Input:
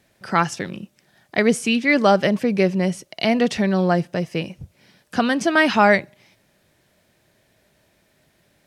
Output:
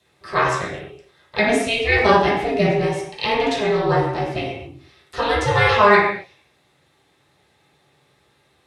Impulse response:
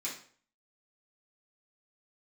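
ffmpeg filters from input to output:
-filter_complex "[0:a]aeval=exprs='val(0)*sin(2*PI*210*n/s)':c=same,highpass=73[a];[1:a]atrim=start_sample=2205,atrim=end_sample=6174,asetrate=22932,aresample=44100[b];[a][b]afir=irnorm=-1:irlink=0,volume=-2dB"

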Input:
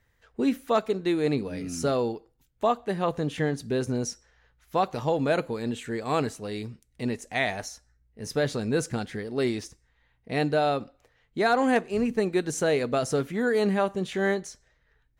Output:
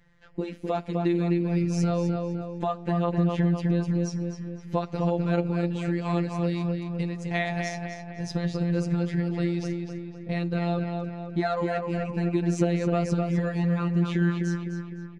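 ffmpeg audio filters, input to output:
-filter_complex "[0:a]lowpass=5k,equalizer=f=95:w=0.59:g=10.5,acompressor=threshold=-29dB:ratio=6,afftfilt=real='hypot(re,im)*cos(PI*b)':imag='0':win_size=1024:overlap=0.75,asplit=2[a][b];[b]adelay=255,lowpass=f=3.2k:p=1,volume=-4dB,asplit=2[c][d];[d]adelay=255,lowpass=f=3.2k:p=1,volume=0.54,asplit=2[e][f];[f]adelay=255,lowpass=f=3.2k:p=1,volume=0.54,asplit=2[g][h];[h]adelay=255,lowpass=f=3.2k:p=1,volume=0.54,asplit=2[i][j];[j]adelay=255,lowpass=f=3.2k:p=1,volume=0.54,asplit=2[k][l];[l]adelay=255,lowpass=f=3.2k:p=1,volume=0.54,asplit=2[m][n];[n]adelay=255,lowpass=f=3.2k:p=1,volume=0.54[o];[c][e][g][i][k][m][o]amix=inputs=7:normalize=0[p];[a][p]amix=inputs=2:normalize=0,volume=7.5dB"

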